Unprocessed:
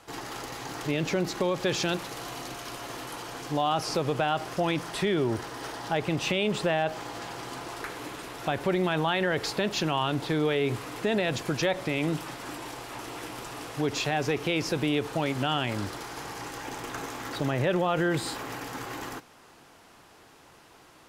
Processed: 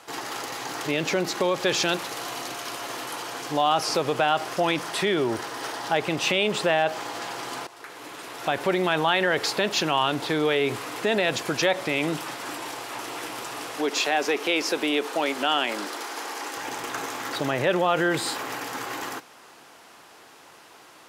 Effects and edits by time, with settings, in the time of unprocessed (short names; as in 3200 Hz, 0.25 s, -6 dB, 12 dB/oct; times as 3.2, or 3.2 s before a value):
7.67–8.61 fade in, from -17 dB
13.77–16.57 HPF 240 Hz 24 dB/oct
whole clip: HPF 420 Hz 6 dB/oct; gain +6 dB